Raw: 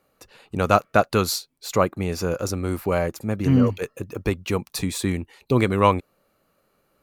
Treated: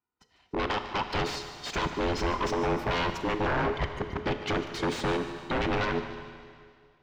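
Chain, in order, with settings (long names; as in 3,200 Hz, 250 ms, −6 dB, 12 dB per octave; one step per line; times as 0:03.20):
frequency inversion band by band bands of 500 Hz
gate on every frequency bin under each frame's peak −25 dB strong
high-shelf EQ 4,200 Hz +11 dB
downward compressor 3 to 1, threshold −19 dBFS, peak gain reduction 7.5 dB
brickwall limiter −15 dBFS, peak gain reduction 8 dB
automatic gain control gain up to 9 dB
power curve on the samples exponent 1.4
notch comb filter 560 Hz
wave folding −20 dBFS
high-frequency loss of the air 180 metres
feedback echo with a high-pass in the loop 148 ms, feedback 56%, level −14 dB
four-comb reverb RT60 2.1 s, combs from 26 ms, DRR 8.5 dB
level −1.5 dB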